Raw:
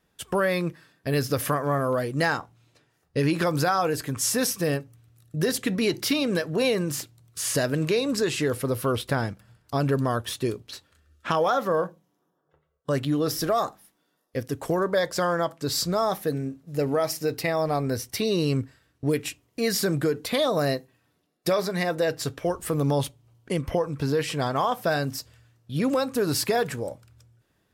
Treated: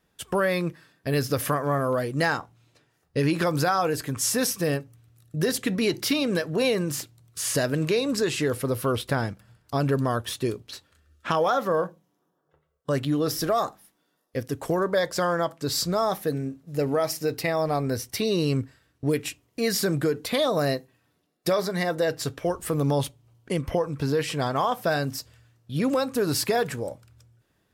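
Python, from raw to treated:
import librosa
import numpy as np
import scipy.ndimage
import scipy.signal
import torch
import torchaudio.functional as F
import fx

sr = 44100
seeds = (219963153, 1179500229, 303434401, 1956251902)

y = fx.notch(x, sr, hz=2500.0, q=8.4, at=(21.5, 22.12))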